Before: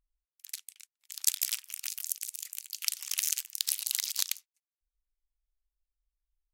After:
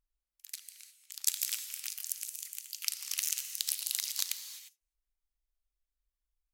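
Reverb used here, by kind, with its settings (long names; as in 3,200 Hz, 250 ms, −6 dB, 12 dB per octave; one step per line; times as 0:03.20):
reverb whose tail is shaped and stops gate 380 ms flat, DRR 8.5 dB
level −3 dB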